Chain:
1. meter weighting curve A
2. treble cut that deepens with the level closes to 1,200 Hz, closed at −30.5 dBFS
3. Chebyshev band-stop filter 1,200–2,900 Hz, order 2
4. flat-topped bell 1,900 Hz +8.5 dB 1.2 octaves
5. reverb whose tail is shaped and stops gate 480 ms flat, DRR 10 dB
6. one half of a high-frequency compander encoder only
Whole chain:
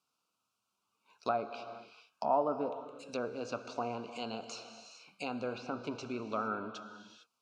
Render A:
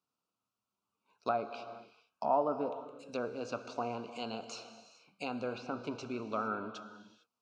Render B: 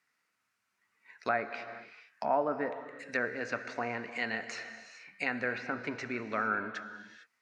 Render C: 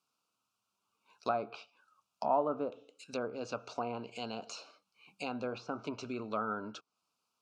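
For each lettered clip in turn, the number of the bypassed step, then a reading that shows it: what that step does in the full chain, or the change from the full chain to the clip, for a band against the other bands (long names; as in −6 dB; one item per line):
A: 6, 8 kHz band −1.5 dB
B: 3, 2 kHz band +13.0 dB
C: 5, change in momentary loudness spread −3 LU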